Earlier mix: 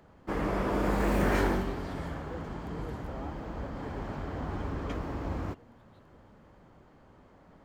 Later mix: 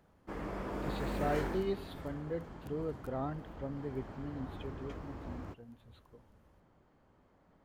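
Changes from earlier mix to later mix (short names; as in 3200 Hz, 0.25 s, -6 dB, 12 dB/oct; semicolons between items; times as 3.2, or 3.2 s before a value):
speech +7.0 dB; background -10.0 dB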